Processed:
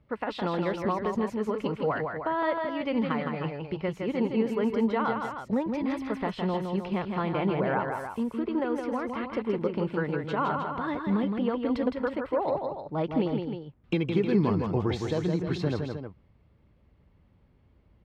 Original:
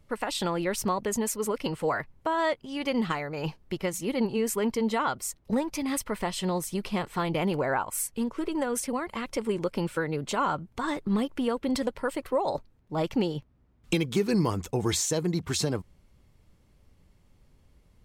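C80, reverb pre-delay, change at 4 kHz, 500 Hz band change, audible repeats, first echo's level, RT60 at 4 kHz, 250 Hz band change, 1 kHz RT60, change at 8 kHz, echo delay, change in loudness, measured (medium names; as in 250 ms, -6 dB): no reverb, no reverb, -7.0 dB, +0.5 dB, 2, -5.0 dB, no reverb, +1.5 dB, no reverb, under -20 dB, 163 ms, 0.0 dB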